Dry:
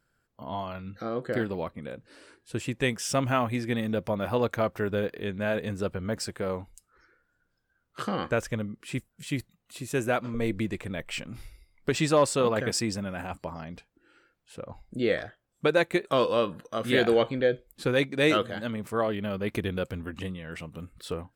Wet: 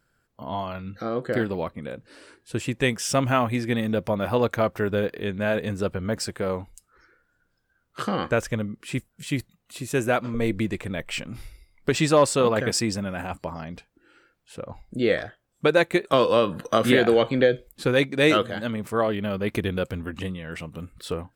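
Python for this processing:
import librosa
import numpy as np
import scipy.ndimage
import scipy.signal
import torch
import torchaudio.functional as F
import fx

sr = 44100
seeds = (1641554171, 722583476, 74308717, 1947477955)

y = fx.band_squash(x, sr, depth_pct=100, at=(16.13, 17.69))
y = F.gain(torch.from_numpy(y), 4.0).numpy()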